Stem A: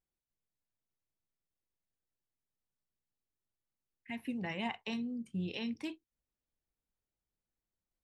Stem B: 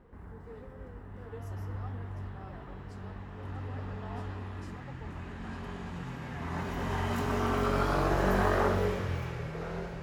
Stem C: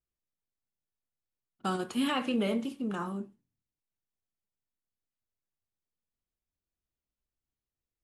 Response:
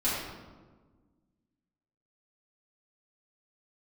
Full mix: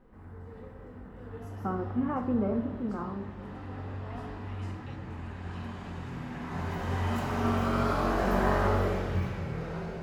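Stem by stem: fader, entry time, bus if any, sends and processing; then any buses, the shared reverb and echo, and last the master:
−15.5 dB, 0.00 s, no send, no processing
−8.0 dB, 0.00 s, send −3.5 dB, no processing
−1.5 dB, 0.00 s, send −17.5 dB, low-pass filter 1,300 Hz 24 dB per octave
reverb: on, RT60 1.4 s, pre-delay 4 ms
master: no processing

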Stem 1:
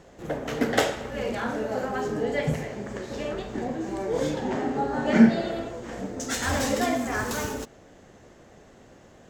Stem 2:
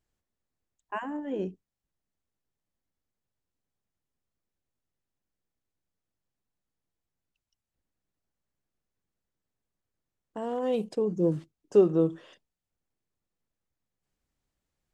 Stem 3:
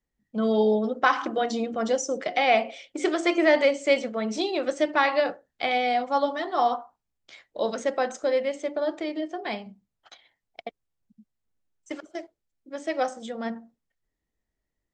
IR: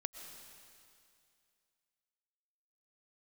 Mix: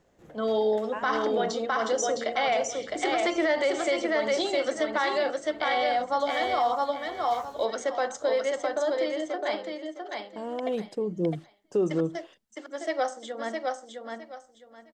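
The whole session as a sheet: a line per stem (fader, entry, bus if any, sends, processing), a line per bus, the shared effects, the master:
−14.5 dB, 0.00 s, no send, no echo send, downward compressor, threshold −33 dBFS, peak gain reduction 20.5 dB
−2.0 dB, 0.00 s, no send, no echo send, no processing
+1.0 dB, 0.00 s, no send, echo send −4 dB, Bessel high-pass filter 390 Hz, order 8; notch filter 2,500 Hz, Q 5.9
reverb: not used
echo: repeating echo 660 ms, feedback 23%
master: brickwall limiter −17 dBFS, peak gain reduction 9 dB

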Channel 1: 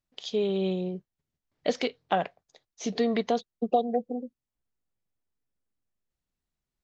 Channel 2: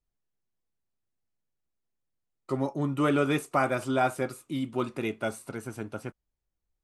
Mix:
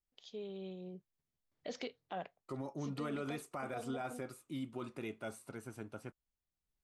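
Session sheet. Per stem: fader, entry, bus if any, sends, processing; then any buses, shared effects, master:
0:00.77 −18 dB → 0:01.21 −7 dB, 0.00 s, no send, automatic ducking −9 dB, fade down 0.90 s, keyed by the second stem
−10.0 dB, 0.00 s, no send, no processing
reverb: not used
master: brickwall limiter −31.5 dBFS, peak gain reduction 11 dB

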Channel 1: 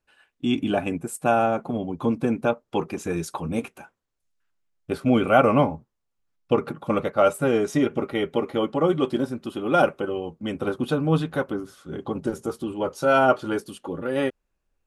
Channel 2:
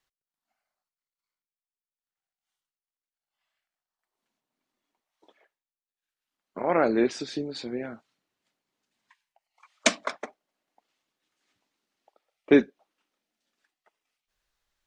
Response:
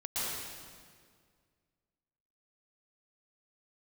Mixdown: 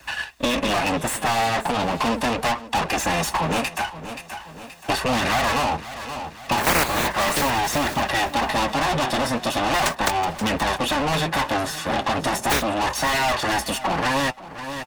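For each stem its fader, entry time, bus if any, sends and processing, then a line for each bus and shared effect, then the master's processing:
−5.0 dB, 0.00 s, no send, echo send −19 dB, lower of the sound and its delayed copy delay 1.1 ms; mid-hump overdrive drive 37 dB, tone 7,700 Hz, clips at −6 dBFS; flanger 0.38 Hz, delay 0.4 ms, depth 9.1 ms, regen −46%
−2.0 dB, 0.00 s, no send, echo send −16.5 dB, compressing power law on the bin magnitudes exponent 0.19; leveller curve on the samples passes 3; square-wave tremolo 1.5 Hz, depth 65%, duty 25%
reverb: not used
echo: repeating echo 527 ms, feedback 17%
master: parametric band 61 Hz +13 dB 0.55 octaves; multiband upward and downward compressor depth 70%

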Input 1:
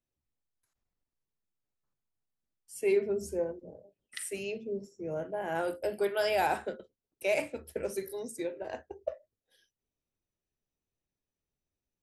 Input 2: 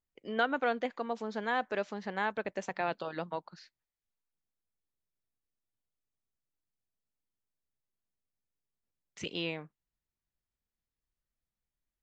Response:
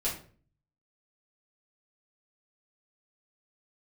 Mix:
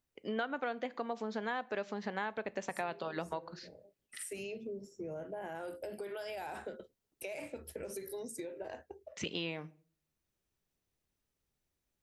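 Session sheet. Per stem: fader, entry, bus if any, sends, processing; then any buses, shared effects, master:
+2.5 dB, 0.00 s, no send, brickwall limiter −29 dBFS, peak gain reduction 11 dB; downward compressor 6 to 1, threshold −42 dBFS, peak gain reduction 9.5 dB; automatic ducking −9 dB, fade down 0.45 s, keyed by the second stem
+2.5 dB, 0.00 s, send −22 dB, high-pass filter 49 Hz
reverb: on, RT60 0.45 s, pre-delay 4 ms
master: downward compressor 4 to 1, threshold −34 dBFS, peak gain reduction 12 dB

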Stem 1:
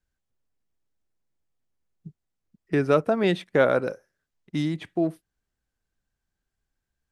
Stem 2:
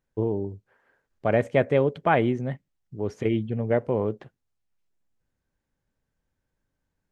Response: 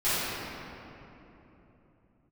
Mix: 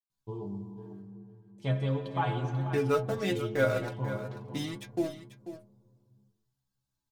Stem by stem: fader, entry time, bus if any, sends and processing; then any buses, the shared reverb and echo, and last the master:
−6.0 dB, 0.00 s, no send, echo send −12 dB, high-shelf EQ 7,800 Hz −11 dB; automatic gain control gain up to 12.5 dB; dead-zone distortion −32.5 dBFS
−3.0 dB, 0.10 s, muted 0:01.02–0:01.58, send −19.5 dB, echo send −10.5 dB, graphic EQ with 10 bands 125 Hz +7 dB, 500 Hz −9 dB, 1,000 Hz +8 dB, 2,000 Hz −10 dB, 4,000 Hz +8 dB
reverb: on, RT60 3.3 s, pre-delay 5 ms
echo: single-tap delay 490 ms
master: high-shelf EQ 4,000 Hz +12 dB; stiff-string resonator 64 Hz, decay 0.37 s, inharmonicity 0.008

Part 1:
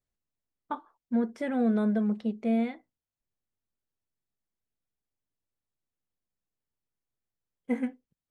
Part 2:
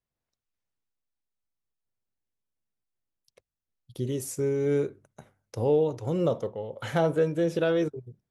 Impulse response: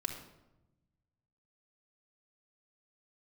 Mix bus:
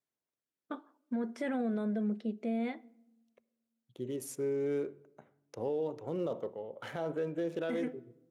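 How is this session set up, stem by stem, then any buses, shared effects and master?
+0.5 dB, 0.00 s, send −21 dB, rotating-speaker cabinet horn 0.6 Hz
−7.0 dB, 0.00 s, send −16 dB, adaptive Wiener filter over 9 samples; notch filter 7,900 Hz, Q 19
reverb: on, RT60 0.95 s, pre-delay 3 ms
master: high-pass filter 210 Hz 12 dB per octave; brickwall limiter −26.5 dBFS, peak gain reduction 9 dB

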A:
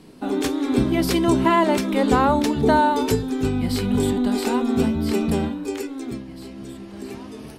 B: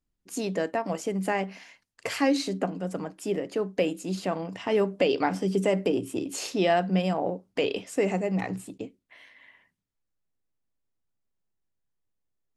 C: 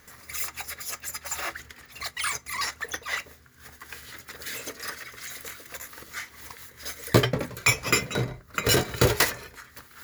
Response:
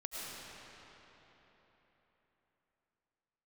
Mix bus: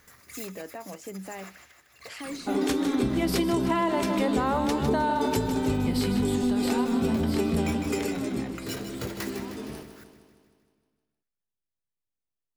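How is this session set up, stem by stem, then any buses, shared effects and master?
−1.0 dB, 2.25 s, no send, echo send −10 dB, no processing
−9.0 dB, 0.00 s, no send, no echo send, brickwall limiter −20.5 dBFS, peak gain reduction 10 dB
−3.5 dB, 0.00 s, no send, echo send −21 dB, automatic ducking −12 dB, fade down 0.75 s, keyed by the second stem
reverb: not used
echo: repeating echo 155 ms, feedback 59%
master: downward compressor 10 to 1, threshold −21 dBFS, peak gain reduction 9 dB

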